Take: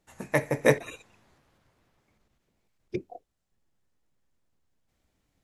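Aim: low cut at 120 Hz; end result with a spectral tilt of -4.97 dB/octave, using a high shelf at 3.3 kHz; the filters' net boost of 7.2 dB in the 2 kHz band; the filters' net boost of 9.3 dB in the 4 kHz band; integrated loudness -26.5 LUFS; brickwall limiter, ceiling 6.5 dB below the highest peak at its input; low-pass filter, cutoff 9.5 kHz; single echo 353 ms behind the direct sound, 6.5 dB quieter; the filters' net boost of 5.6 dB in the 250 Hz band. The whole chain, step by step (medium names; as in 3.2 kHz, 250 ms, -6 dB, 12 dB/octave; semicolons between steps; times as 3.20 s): high-pass 120 Hz; low-pass 9.5 kHz; peaking EQ 250 Hz +7.5 dB; peaking EQ 2 kHz +5.5 dB; treble shelf 3.3 kHz +4 dB; peaking EQ 4 kHz +6.5 dB; peak limiter -8 dBFS; delay 353 ms -6.5 dB; trim +1.5 dB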